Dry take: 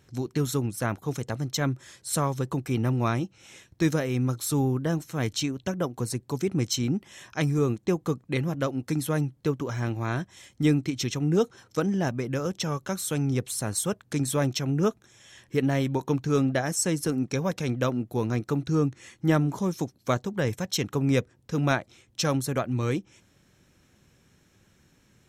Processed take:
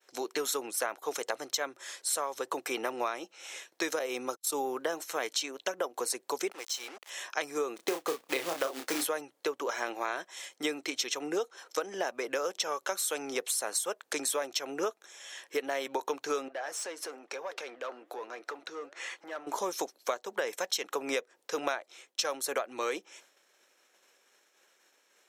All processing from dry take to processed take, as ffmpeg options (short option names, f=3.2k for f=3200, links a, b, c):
-filter_complex "[0:a]asettb=1/sr,asplit=3[a][b][c];[a]atrim=end=3.994[d];[b]atrim=start=3.99:end=4.65,asetpts=PTS-STARTPTS,afade=t=in:d=0.004:c=qsin,afade=t=out:st=0.656:d=0.004:c=qsin,agate=range=-58dB:threshold=-31dB:ratio=16:release=100:detection=peak,equalizer=f=1.7k:t=o:w=0.81:g=-6[e];[c]atrim=start=4.646[f];[d][e]acrossfade=d=0.004:c1=hsin:c2=qsin[g];[g][f]acrossfade=d=0.004:c1=qsin:c2=hsin,asettb=1/sr,asplit=3[h][i][j];[h]atrim=end=6.514[k];[i]atrim=start=6.51:end=7.1,asetpts=PTS-STARTPTS,afade=t=in:d=0.004:c=qsin,afade=t=out:st=0.586:d=0.004:c=qsin,highpass=540,acompressor=threshold=-45dB:ratio=2:attack=3.2:release=140:knee=1:detection=peak,acrusher=bits=7:mix=0:aa=0.5[l];[j]atrim=start=7.096[m];[k][l]acrossfade=d=0.004:c1=hsin:c2=qsin[n];[n][m]acrossfade=d=0.004:c1=qsin:c2=hsin,asettb=1/sr,asplit=3[o][p][q];[o]atrim=end=7.764[r];[p]atrim=start=7.76:end=9.06,asetpts=PTS-STARTPTS,afade=t=in:d=0.004:c=qsin,afade=t=out:st=1.296:d=0.004:c=qsin,lowshelf=f=420:g=5,acrusher=bits=4:mode=log:mix=0:aa=0.000001,asplit=2[s][t];[t]adelay=30,volume=-5.5dB[u];[s][u]amix=inputs=2:normalize=0,atrim=end_sample=57330[v];[q]atrim=start=9.056[w];[r][v]acrossfade=d=0.004:c1=hsin:c2=qsin[x];[x][w]acrossfade=d=0.004:c1=qsin:c2=hsin,asettb=1/sr,asplit=3[y][z][aa];[y]atrim=end=16.484[ab];[z]atrim=start=16.48:end=19.47,asetpts=PTS-STARTPTS,afade=t=in:d=0.004:c=qsin,afade=t=out:st=2.986:d=0.004:c=qsin,asplit=2[ac][ad];[ad]highpass=f=720:p=1,volume=19dB,asoftclip=type=tanh:threshold=-10.5dB[ae];[ac][ae]amix=inputs=2:normalize=0,lowpass=f=2k:p=1,volume=-6dB,acompressor=threshold=-36dB:ratio=5:attack=3.2:release=140:knee=1:detection=peak,flanger=delay=0.9:depth=7.9:regen=-90:speed=1.1:shape=triangular[af];[aa]atrim=start=19.466[ag];[ab][af]acrossfade=d=0.004:c1=hsin:c2=qsin[ah];[ah][ag]acrossfade=d=0.004:c1=qsin:c2=hsin,agate=range=-33dB:threshold=-55dB:ratio=3:detection=peak,highpass=f=460:w=0.5412,highpass=f=460:w=1.3066,acompressor=threshold=-34dB:ratio=12,volume=6dB"